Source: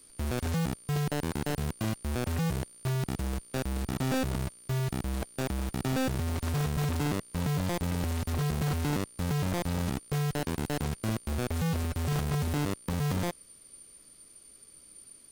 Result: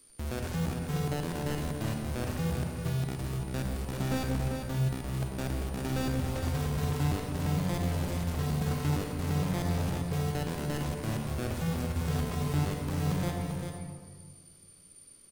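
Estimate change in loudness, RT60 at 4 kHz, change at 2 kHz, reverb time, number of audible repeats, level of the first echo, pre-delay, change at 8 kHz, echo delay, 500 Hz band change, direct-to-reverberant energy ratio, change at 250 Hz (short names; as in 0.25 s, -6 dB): -0.5 dB, 1.0 s, -2.0 dB, 1.7 s, 1, -7.0 dB, 39 ms, -2.5 dB, 0.394 s, -1.0 dB, 0.5 dB, -0.5 dB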